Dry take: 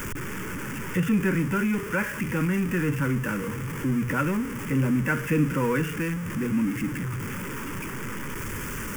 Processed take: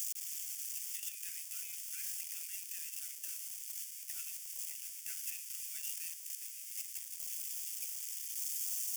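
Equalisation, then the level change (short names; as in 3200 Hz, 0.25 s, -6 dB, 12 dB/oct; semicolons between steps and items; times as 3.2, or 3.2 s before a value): inverse Chebyshev high-pass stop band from 730 Hz, stop band 80 dB; +2.5 dB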